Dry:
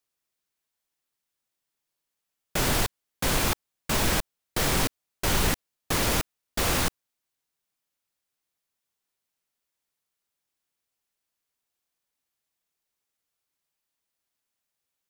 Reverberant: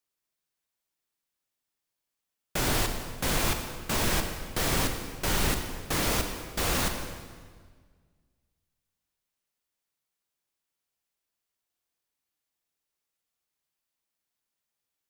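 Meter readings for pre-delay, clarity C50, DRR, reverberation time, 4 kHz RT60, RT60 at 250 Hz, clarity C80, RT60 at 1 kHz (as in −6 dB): 33 ms, 6.5 dB, 5.5 dB, 1.7 s, 1.4 s, 2.0 s, 7.5 dB, 1.6 s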